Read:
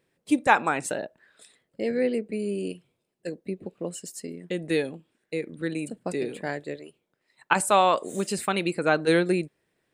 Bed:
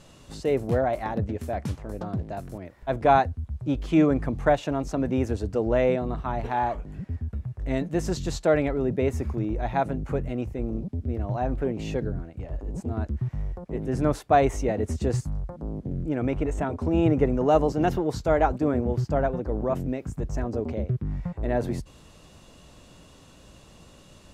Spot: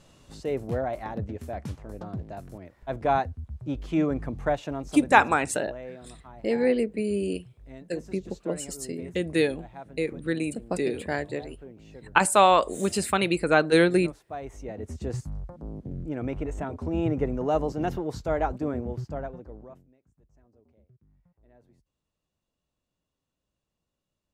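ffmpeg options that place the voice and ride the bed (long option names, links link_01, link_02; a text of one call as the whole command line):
ffmpeg -i stem1.wav -i stem2.wav -filter_complex "[0:a]adelay=4650,volume=2dB[link_01];[1:a]volume=8dB,afade=type=out:start_time=4.69:duration=0.71:silence=0.223872,afade=type=in:start_time=14.41:duration=0.88:silence=0.223872,afade=type=out:start_time=18.62:duration=1.24:silence=0.0375837[link_02];[link_01][link_02]amix=inputs=2:normalize=0" out.wav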